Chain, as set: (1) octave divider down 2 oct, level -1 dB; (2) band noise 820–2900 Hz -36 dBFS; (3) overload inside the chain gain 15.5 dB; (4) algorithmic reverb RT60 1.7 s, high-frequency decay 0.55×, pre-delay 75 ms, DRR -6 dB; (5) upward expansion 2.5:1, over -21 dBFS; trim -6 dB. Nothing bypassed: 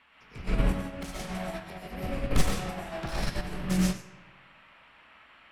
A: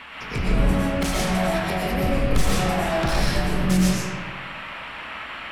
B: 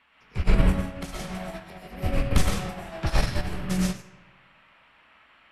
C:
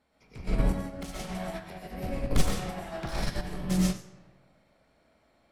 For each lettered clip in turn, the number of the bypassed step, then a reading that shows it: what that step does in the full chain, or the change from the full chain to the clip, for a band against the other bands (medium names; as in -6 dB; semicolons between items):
5, crest factor change -6.5 dB; 3, distortion -8 dB; 2, 2 kHz band -3.0 dB